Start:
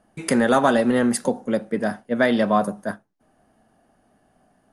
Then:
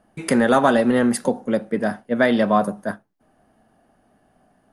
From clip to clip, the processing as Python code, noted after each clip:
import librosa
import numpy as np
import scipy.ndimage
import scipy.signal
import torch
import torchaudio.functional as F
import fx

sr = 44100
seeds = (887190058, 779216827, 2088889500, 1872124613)

y = fx.peak_eq(x, sr, hz=7100.0, db=-4.0, octaves=1.2)
y = y * librosa.db_to_amplitude(1.5)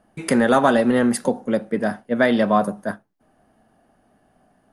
y = x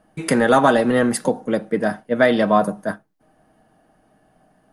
y = x + 0.33 * np.pad(x, (int(6.4 * sr / 1000.0), 0))[:len(x)]
y = y * librosa.db_to_amplitude(1.5)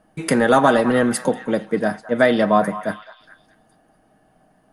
y = fx.echo_stepped(x, sr, ms=210, hz=1100.0, octaves=0.7, feedback_pct=70, wet_db=-11.0)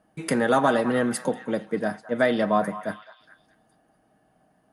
y = scipy.signal.sosfilt(scipy.signal.butter(2, 42.0, 'highpass', fs=sr, output='sos'), x)
y = y * librosa.db_to_amplitude(-6.0)